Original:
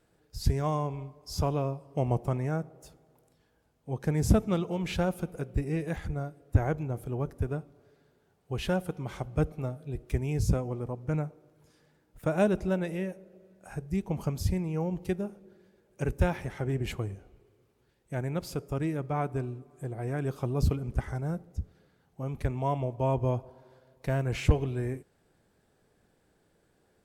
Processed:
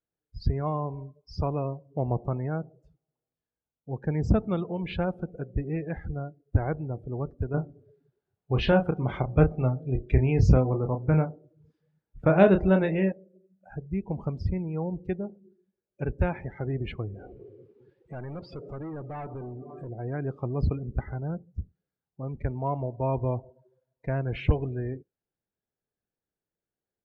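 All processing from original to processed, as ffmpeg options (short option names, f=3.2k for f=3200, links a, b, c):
-filter_complex "[0:a]asettb=1/sr,asplit=3[a][b][c];[a]atrim=end=7.544[d];[b]atrim=start=7.54:end=13.12,asetpts=PTS-STARTPTS,afade=t=in:d=0.004:c=qsin,afade=t=out:st=5.576:d=0.004:c=qsin,acontrast=76,asplit=2[e][f];[f]adelay=31,volume=-6.5dB[g];[e][g]amix=inputs=2:normalize=0,atrim=end_sample=246078[h];[c]atrim=start=13.116[i];[d][h]acrossfade=d=0.004:c1=hsin:c2=qsin[j];[j][i]acrossfade=d=0.004:c1=qsin:c2=hsin,asettb=1/sr,asplit=3[k][l][m];[k]atrim=end=17.144[n];[l]atrim=start=17.14:end=19.89,asetpts=PTS-STARTPTS,afade=t=in:d=0.004:c=qsin,afade=t=out:st=2.746:d=0.004:c=qsin,lowshelf=f=290:g=8.5,acompressor=threshold=-49dB:ratio=2:attack=3.2:release=140:knee=1:detection=peak,asplit=2[o][p];[p]highpass=f=720:p=1,volume=28dB,asoftclip=type=tanh:threshold=-30.5dB[q];[o][q]amix=inputs=2:normalize=0,lowpass=f=3.7k:p=1,volume=-6dB[r];[m]atrim=start=19.886[s];[n][r]acrossfade=d=0.004:c1=hsin:c2=qsin[t];[t][s]acrossfade=d=0.004:c1=qsin:c2=hsin,lowpass=4.3k,afftdn=nr=25:nf=-43"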